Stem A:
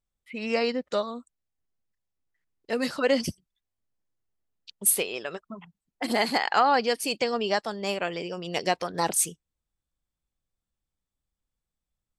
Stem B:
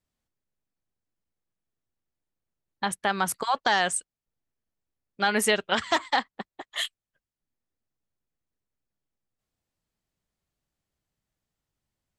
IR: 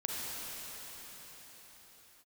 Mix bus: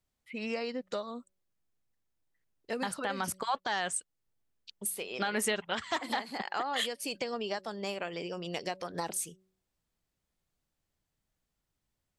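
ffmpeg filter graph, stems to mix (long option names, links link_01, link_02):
-filter_complex "[0:a]bandreject=frequency=188.2:width_type=h:width=4,bandreject=frequency=376.4:width_type=h:width=4,bandreject=frequency=564.6:width_type=h:width=4,acompressor=threshold=-28dB:ratio=6,volume=-3.5dB[link_01];[1:a]volume=-0.5dB[link_02];[link_01][link_02]amix=inputs=2:normalize=0,alimiter=limit=-20dB:level=0:latency=1:release=365"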